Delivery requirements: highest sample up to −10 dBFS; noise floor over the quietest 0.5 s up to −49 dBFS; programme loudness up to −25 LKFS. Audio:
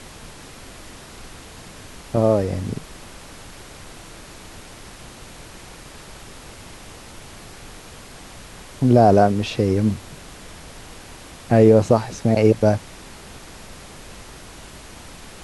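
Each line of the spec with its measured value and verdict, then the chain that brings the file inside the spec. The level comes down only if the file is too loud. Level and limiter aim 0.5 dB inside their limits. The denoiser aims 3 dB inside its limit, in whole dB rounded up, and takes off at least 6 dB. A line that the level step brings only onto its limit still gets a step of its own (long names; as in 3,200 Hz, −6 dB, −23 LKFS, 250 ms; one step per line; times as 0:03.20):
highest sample −2.0 dBFS: out of spec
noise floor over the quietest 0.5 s −40 dBFS: out of spec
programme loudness −18.0 LKFS: out of spec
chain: broadband denoise 6 dB, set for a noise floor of −40 dBFS
level −7.5 dB
brickwall limiter −10.5 dBFS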